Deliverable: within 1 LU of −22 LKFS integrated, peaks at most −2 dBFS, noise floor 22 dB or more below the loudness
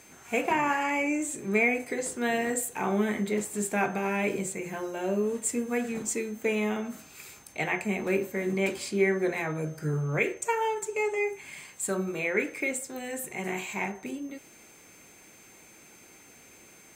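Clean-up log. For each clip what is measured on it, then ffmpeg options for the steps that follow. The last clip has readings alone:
interfering tone 6,300 Hz; level of the tone −57 dBFS; integrated loudness −29.5 LKFS; sample peak −11.5 dBFS; target loudness −22.0 LKFS
→ -af "bandreject=frequency=6300:width=30"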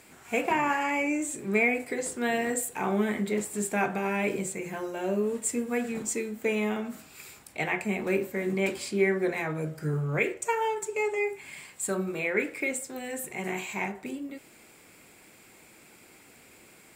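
interfering tone none found; integrated loudness −29.5 LKFS; sample peak −11.5 dBFS; target loudness −22.0 LKFS
→ -af "volume=7.5dB"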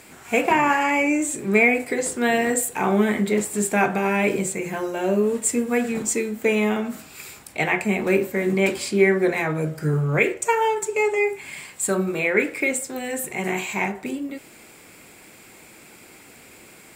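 integrated loudness −22.0 LKFS; sample peak −4.0 dBFS; background noise floor −48 dBFS

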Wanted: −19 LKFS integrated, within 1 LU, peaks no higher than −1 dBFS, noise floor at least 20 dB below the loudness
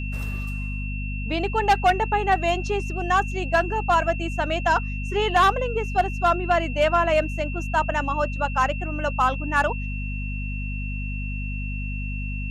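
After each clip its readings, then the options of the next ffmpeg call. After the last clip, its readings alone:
mains hum 50 Hz; hum harmonics up to 250 Hz; level of the hum −27 dBFS; interfering tone 2,700 Hz; level of the tone −35 dBFS; integrated loudness −24.0 LKFS; sample peak −9.5 dBFS; target loudness −19.0 LKFS
→ -af "bandreject=frequency=50:width_type=h:width=6,bandreject=frequency=100:width_type=h:width=6,bandreject=frequency=150:width_type=h:width=6,bandreject=frequency=200:width_type=h:width=6,bandreject=frequency=250:width_type=h:width=6"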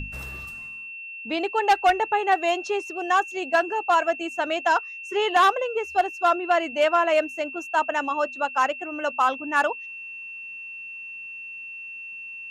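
mains hum none found; interfering tone 2,700 Hz; level of the tone −35 dBFS
→ -af "bandreject=frequency=2700:width=30"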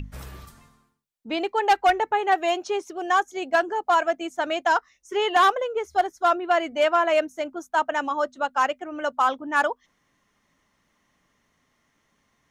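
interfering tone none found; integrated loudness −23.5 LKFS; sample peak −10.5 dBFS; target loudness −19.0 LKFS
→ -af "volume=4.5dB"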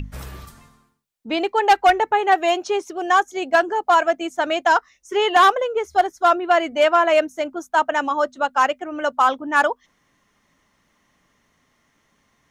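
integrated loudness −19.0 LKFS; sample peak −6.0 dBFS; background noise floor −66 dBFS

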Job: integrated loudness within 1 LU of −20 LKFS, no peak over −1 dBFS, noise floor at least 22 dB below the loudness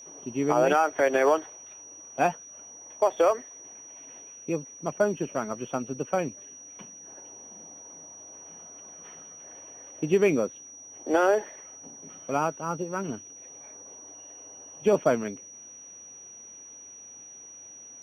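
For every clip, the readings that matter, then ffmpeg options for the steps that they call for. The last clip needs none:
interfering tone 5,800 Hz; level of the tone −44 dBFS; integrated loudness −26.5 LKFS; sample peak −11.5 dBFS; target loudness −20.0 LKFS
→ -af "bandreject=frequency=5800:width=30"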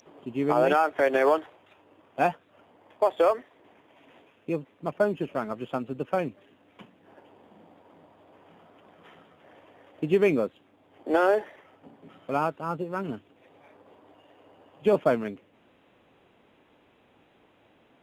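interfering tone none found; integrated loudness −27.0 LKFS; sample peak −12.0 dBFS; target loudness −20.0 LKFS
→ -af "volume=7dB"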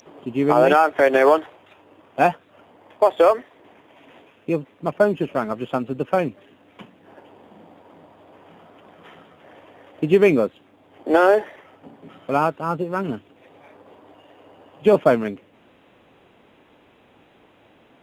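integrated loudness −20.0 LKFS; sample peak −5.0 dBFS; background noise floor −55 dBFS

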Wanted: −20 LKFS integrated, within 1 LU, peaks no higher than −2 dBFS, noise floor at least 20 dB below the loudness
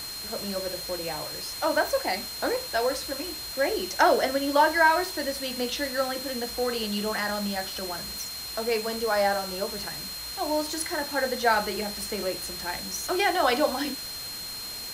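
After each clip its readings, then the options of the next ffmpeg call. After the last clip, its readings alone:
interfering tone 4,200 Hz; level of the tone −36 dBFS; background noise floor −37 dBFS; target noise floor −47 dBFS; integrated loudness −27.0 LKFS; sample peak −8.0 dBFS; target loudness −20.0 LKFS
→ -af "bandreject=frequency=4200:width=30"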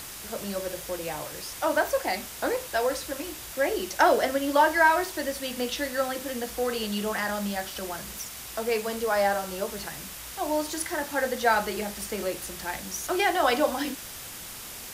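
interfering tone none found; background noise floor −41 dBFS; target noise floor −48 dBFS
→ -af "afftdn=noise_reduction=7:noise_floor=-41"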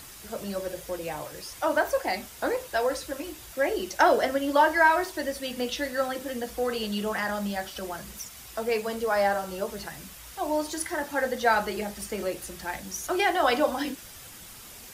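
background noise floor −46 dBFS; target noise floor −48 dBFS
→ -af "afftdn=noise_reduction=6:noise_floor=-46"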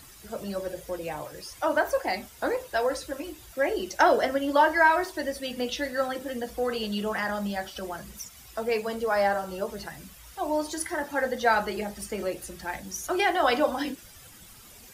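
background noise floor −50 dBFS; integrated loudness −28.0 LKFS; sample peak −8.0 dBFS; target loudness −20.0 LKFS
→ -af "volume=8dB,alimiter=limit=-2dB:level=0:latency=1"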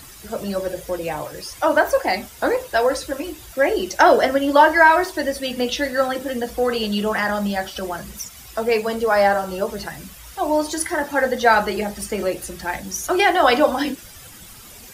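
integrated loudness −20.0 LKFS; sample peak −2.0 dBFS; background noise floor −42 dBFS

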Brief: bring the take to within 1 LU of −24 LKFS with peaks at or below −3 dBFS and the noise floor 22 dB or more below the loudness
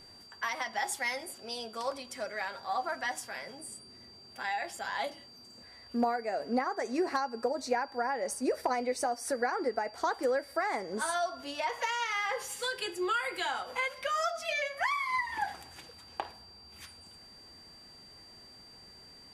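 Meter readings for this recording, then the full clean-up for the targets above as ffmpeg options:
interfering tone 4,700 Hz; level of the tone −52 dBFS; integrated loudness −33.5 LKFS; sample peak −17.5 dBFS; target loudness −24.0 LKFS
→ -af "bandreject=frequency=4700:width=30"
-af "volume=9.5dB"

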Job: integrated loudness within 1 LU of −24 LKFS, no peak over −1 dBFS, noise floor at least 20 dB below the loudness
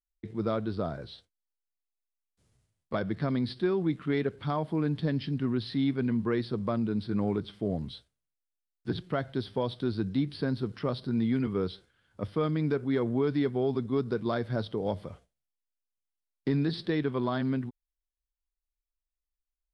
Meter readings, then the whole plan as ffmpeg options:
integrated loudness −31.0 LKFS; sample peak −17.5 dBFS; target loudness −24.0 LKFS
→ -af "volume=7dB"

